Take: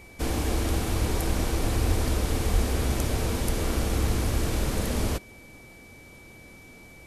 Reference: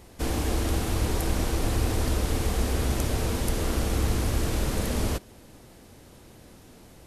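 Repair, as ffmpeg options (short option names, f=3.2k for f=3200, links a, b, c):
-filter_complex "[0:a]bandreject=f=2.3k:w=30,asplit=3[a][b][c];[a]afade=t=out:st=1.87:d=0.02[d];[b]highpass=f=140:w=0.5412,highpass=f=140:w=1.3066,afade=t=in:st=1.87:d=0.02,afade=t=out:st=1.99:d=0.02[e];[c]afade=t=in:st=1.99:d=0.02[f];[d][e][f]amix=inputs=3:normalize=0,asplit=3[g][h][i];[g]afade=t=out:st=2.52:d=0.02[j];[h]highpass=f=140:w=0.5412,highpass=f=140:w=1.3066,afade=t=in:st=2.52:d=0.02,afade=t=out:st=2.64:d=0.02[k];[i]afade=t=in:st=2.64:d=0.02[l];[j][k][l]amix=inputs=3:normalize=0"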